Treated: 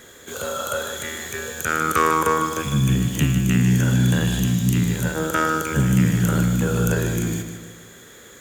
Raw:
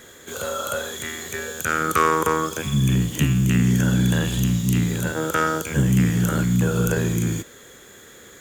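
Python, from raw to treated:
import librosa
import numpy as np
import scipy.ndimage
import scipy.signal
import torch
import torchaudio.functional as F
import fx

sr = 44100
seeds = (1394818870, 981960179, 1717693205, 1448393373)

y = fx.echo_feedback(x, sr, ms=152, feedback_pct=47, wet_db=-8.5)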